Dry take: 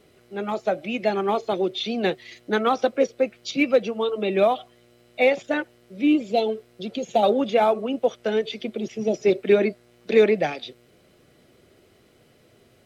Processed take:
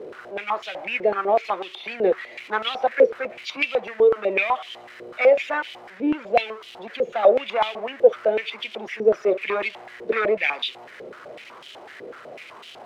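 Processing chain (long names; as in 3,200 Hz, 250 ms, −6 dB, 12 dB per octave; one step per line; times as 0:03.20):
converter with a step at zero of −32 dBFS
dynamic equaliser 2,200 Hz, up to +6 dB, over −42 dBFS, Q 1.7
leveller curve on the samples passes 1
band-pass on a step sequencer 8 Hz 470–3,100 Hz
level +5.5 dB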